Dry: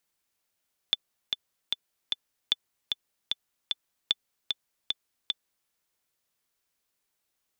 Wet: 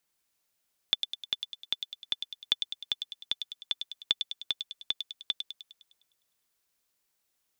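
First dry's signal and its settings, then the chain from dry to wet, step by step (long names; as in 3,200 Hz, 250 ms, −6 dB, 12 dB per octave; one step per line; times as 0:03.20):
click track 151 BPM, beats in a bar 4, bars 3, 3,500 Hz, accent 4.5 dB −9.5 dBFS
delay with a high-pass on its return 102 ms, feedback 53%, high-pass 3,700 Hz, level −3 dB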